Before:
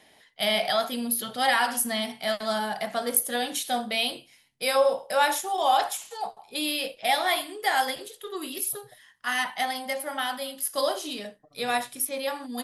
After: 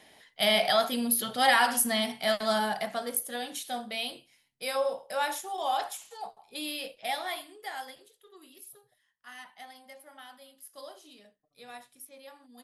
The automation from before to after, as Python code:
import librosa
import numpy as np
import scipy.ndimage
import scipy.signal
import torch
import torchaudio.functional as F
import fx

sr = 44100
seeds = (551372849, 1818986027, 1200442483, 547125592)

y = fx.gain(x, sr, db=fx.line((2.68, 0.5), (3.16, -7.5), (7.01, -7.5), (8.25, -19.5)))